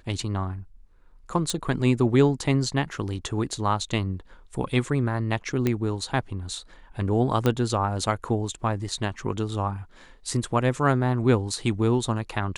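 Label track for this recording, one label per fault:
1.500000	1.500000	pop -12 dBFS
5.670000	5.670000	pop -11 dBFS
7.460000	7.460000	pop -10 dBFS

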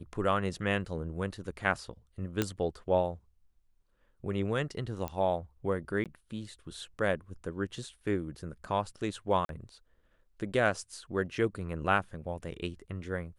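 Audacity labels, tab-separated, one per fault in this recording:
2.420000	2.420000	pop -13 dBFS
5.080000	5.080000	pop -20 dBFS
6.040000	6.060000	gap 17 ms
9.450000	9.490000	gap 42 ms

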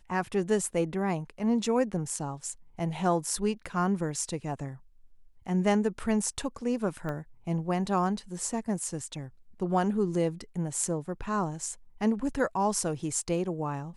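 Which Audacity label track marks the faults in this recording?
7.090000	7.090000	pop -23 dBFS

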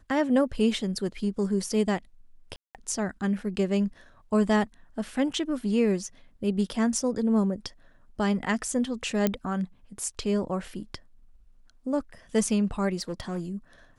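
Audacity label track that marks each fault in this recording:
2.560000	2.750000	gap 0.188 s
9.270000	9.270000	pop -10 dBFS
13.000000	13.410000	clipped -26 dBFS

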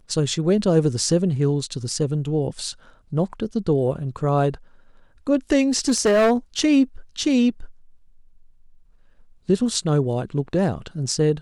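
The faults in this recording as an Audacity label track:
5.880000	6.320000	clipped -13.5 dBFS

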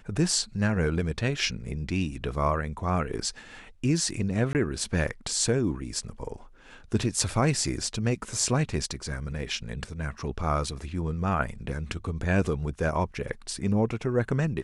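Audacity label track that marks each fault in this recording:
4.530000	4.550000	gap 18 ms

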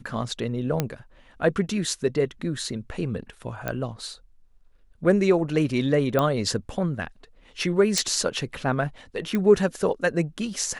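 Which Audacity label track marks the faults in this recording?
0.800000	0.800000	pop -9 dBFS
3.680000	3.680000	pop -14 dBFS
6.190000	6.190000	pop -10 dBFS
7.980000	7.980000	pop
9.350000	9.350000	pop -14 dBFS

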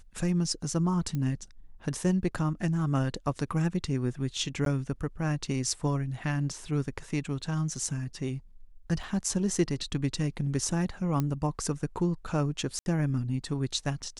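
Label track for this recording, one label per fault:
1.150000	1.150000	pop -21 dBFS
4.650000	4.660000	gap 12 ms
9.030000	9.030000	gap 3.8 ms
11.200000	11.200000	pop -16 dBFS
12.790000	12.860000	gap 71 ms

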